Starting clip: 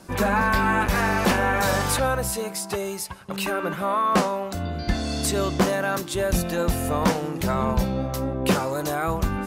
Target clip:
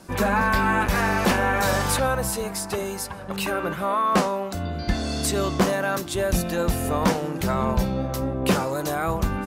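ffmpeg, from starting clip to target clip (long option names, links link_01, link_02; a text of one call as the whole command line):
ffmpeg -i in.wav -filter_complex "[0:a]asplit=2[link_01][link_02];[link_02]adelay=1516,volume=-15dB,highshelf=frequency=4000:gain=-34.1[link_03];[link_01][link_03]amix=inputs=2:normalize=0" out.wav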